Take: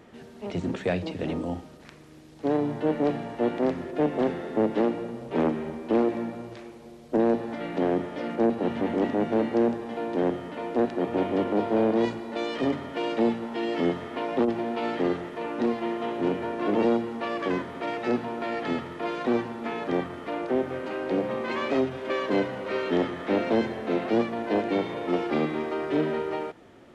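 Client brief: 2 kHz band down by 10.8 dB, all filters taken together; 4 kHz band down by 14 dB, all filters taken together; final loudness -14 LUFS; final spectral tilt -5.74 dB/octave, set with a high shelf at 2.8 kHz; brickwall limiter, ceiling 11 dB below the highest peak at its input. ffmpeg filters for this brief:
-af "equalizer=f=2000:t=o:g=-8.5,highshelf=f=2800:g=-9,equalizer=f=4000:t=o:g=-8.5,volume=9.44,alimiter=limit=0.562:level=0:latency=1"

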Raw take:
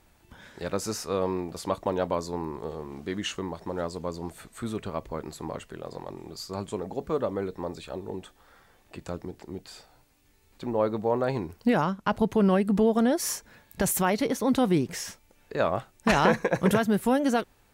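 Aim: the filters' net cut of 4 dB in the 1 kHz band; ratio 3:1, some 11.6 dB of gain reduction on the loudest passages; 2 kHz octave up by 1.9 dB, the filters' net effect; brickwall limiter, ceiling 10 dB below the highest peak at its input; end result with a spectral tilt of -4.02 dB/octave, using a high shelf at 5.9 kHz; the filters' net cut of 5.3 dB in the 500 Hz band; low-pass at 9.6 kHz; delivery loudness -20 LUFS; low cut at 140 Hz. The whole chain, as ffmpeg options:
-af "highpass=140,lowpass=9600,equalizer=f=500:t=o:g=-5.5,equalizer=f=1000:t=o:g=-4.5,equalizer=f=2000:t=o:g=4,highshelf=f=5900:g=5,acompressor=threshold=0.0158:ratio=3,volume=10.6,alimiter=limit=0.398:level=0:latency=1"

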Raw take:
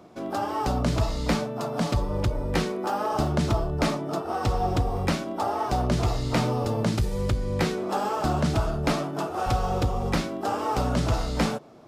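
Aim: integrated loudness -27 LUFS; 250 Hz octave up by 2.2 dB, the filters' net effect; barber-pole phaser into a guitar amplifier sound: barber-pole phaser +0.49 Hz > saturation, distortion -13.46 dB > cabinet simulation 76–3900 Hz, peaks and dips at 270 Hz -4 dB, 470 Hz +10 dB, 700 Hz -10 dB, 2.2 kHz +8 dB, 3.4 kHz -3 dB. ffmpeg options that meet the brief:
-filter_complex "[0:a]equalizer=f=250:t=o:g=4.5,asplit=2[s0][s1];[s1]afreqshift=0.49[s2];[s0][s2]amix=inputs=2:normalize=1,asoftclip=threshold=0.0794,highpass=76,equalizer=f=270:t=q:w=4:g=-4,equalizer=f=470:t=q:w=4:g=10,equalizer=f=700:t=q:w=4:g=-10,equalizer=f=2200:t=q:w=4:g=8,equalizer=f=3400:t=q:w=4:g=-3,lowpass=f=3900:w=0.5412,lowpass=f=3900:w=1.3066,volume=1.5"

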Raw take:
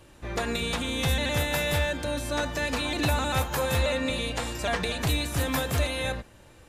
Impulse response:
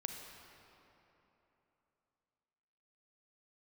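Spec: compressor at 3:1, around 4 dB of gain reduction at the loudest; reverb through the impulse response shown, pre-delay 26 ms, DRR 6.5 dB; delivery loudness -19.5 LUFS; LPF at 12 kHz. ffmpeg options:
-filter_complex "[0:a]lowpass=12000,acompressor=threshold=0.0501:ratio=3,asplit=2[s0][s1];[1:a]atrim=start_sample=2205,adelay=26[s2];[s1][s2]afir=irnorm=-1:irlink=0,volume=0.531[s3];[s0][s3]amix=inputs=2:normalize=0,volume=2.99"

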